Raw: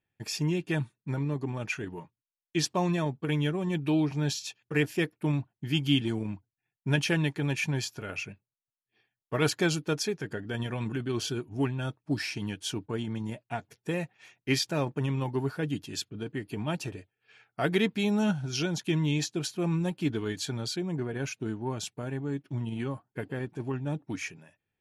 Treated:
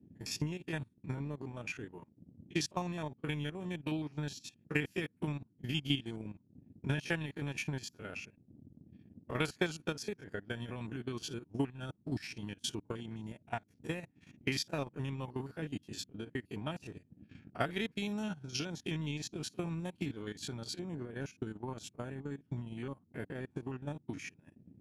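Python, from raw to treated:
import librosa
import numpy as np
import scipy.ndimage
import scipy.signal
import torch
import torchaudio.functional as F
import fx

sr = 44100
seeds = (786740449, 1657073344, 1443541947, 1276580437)

y = fx.spec_steps(x, sr, hold_ms=50)
y = fx.dmg_noise_band(y, sr, seeds[0], low_hz=86.0, high_hz=280.0, level_db=-50.0)
y = fx.hpss(y, sr, part='harmonic', gain_db=-5)
y = fx.transient(y, sr, attack_db=7, sustain_db=-12)
y = fx.dynamic_eq(y, sr, hz=430.0, q=0.71, threshold_db=-34.0, ratio=4.0, max_db=-4)
y = F.gain(torch.from_numpy(y), -5.0).numpy()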